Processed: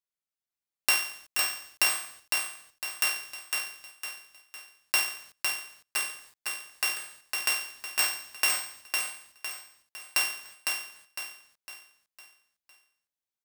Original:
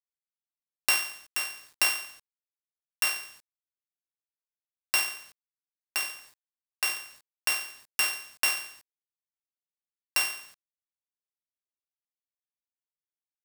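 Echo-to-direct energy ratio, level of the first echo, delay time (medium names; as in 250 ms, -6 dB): -3.0 dB, -4.0 dB, 506 ms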